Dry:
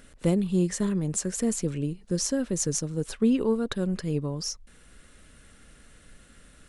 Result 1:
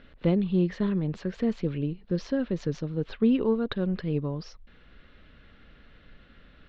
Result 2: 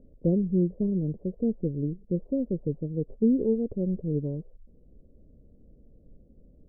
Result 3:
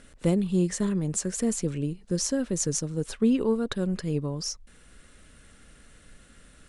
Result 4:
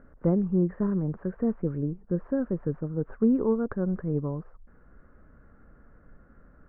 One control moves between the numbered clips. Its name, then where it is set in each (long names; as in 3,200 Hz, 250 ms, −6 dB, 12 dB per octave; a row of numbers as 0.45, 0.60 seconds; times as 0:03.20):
Butterworth low-pass, frequency: 4,000, 570, 11,000, 1,500 Hertz